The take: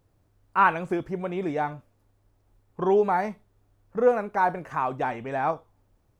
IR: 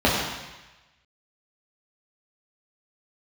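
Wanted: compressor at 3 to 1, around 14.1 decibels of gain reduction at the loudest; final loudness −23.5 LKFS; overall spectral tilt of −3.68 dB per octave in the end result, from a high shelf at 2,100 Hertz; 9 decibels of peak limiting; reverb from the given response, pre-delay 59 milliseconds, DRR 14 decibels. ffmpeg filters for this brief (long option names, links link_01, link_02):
-filter_complex "[0:a]highshelf=frequency=2100:gain=-5,acompressor=threshold=-35dB:ratio=3,alimiter=level_in=7dB:limit=-24dB:level=0:latency=1,volume=-7dB,asplit=2[link_01][link_02];[1:a]atrim=start_sample=2205,adelay=59[link_03];[link_02][link_03]afir=irnorm=-1:irlink=0,volume=-34.5dB[link_04];[link_01][link_04]amix=inputs=2:normalize=0,volume=17.5dB"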